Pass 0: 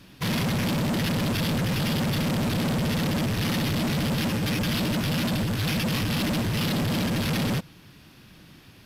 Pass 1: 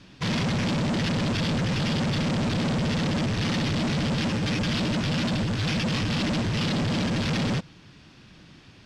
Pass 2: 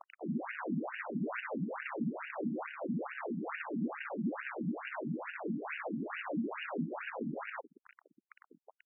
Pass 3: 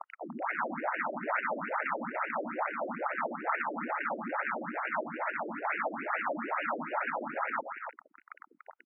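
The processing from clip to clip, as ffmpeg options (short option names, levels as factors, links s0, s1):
-af "lowpass=f=7500:w=0.5412,lowpass=f=7500:w=1.3066"
-filter_complex "[0:a]acrusher=bits=4:dc=4:mix=0:aa=0.000001,asplit=2[s0][s1];[s1]highpass=f=720:p=1,volume=20,asoftclip=type=tanh:threshold=0.0841[s2];[s0][s2]amix=inputs=2:normalize=0,lowpass=f=1200:p=1,volume=0.501,afftfilt=real='re*between(b*sr/1024,210*pow(2100/210,0.5+0.5*sin(2*PI*2.3*pts/sr))/1.41,210*pow(2100/210,0.5+0.5*sin(2*PI*2.3*pts/sr))*1.41)':imag='im*between(b*sr/1024,210*pow(2100/210,0.5+0.5*sin(2*PI*2.3*pts/sr))/1.41,210*pow(2100/210,0.5+0.5*sin(2*PI*2.3*pts/sr))*1.41)':win_size=1024:overlap=0.75"
-af "highpass=420,equalizer=f=420:t=q:w=4:g=-5,equalizer=f=620:t=q:w=4:g=4,equalizer=f=880:t=q:w=4:g=7,equalizer=f=1300:t=q:w=4:g=9,equalizer=f=2100:t=q:w=4:g=4,lowpass=f=2400:w=0.5412,lowpass=f=2400:w=1.3066,aecho=1:1:289:0.422,volume=1.58"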